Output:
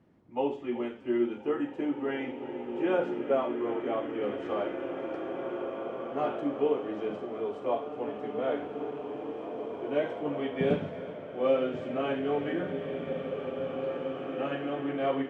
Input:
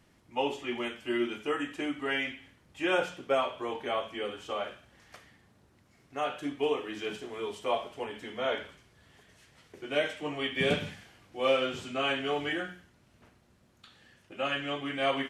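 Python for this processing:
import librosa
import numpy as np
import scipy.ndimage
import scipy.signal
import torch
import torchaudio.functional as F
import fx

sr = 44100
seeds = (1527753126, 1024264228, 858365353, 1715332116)

y = fx.leveller(x, sr, passes=1, at=(4.23, 6.42))
y = fx.bandpass_q(y, sr, hz=280.0, q=0.61)
y = y + 10.0 ** (-17.0 / 20.0) * np.pad(y, (int(374 * sr / 1000.0), 0))[:len(y)]
y = fx.rev_bloom(y, sr, seeds[0], attack_ms=2500, drr_db=4.0)
y = y * librosa.db_to_amplitude(3.5)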